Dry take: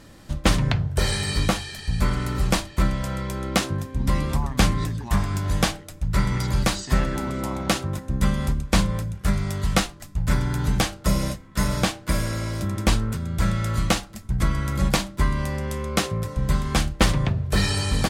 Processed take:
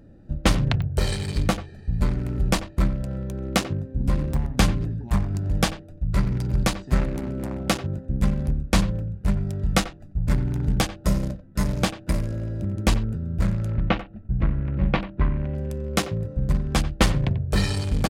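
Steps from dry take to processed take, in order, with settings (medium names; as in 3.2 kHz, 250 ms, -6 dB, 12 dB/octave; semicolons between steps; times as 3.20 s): local Wiener filter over 41 samples; 13.71–15.55 s: low-pass 3 kHz 24 dB/octave; speakerphone echo 90 ms, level -14 dB; clicks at 0.82/4.34 s, -24 dBFS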